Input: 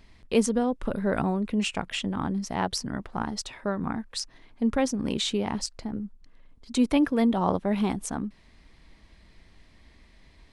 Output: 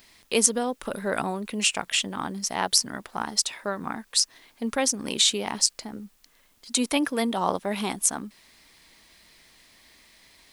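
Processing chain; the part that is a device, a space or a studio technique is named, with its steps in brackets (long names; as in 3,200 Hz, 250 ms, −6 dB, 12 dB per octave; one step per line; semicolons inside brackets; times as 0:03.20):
turntable without a phono preamp (RIAA equalisation recording; white noise bed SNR 37 dB)
level +2 dB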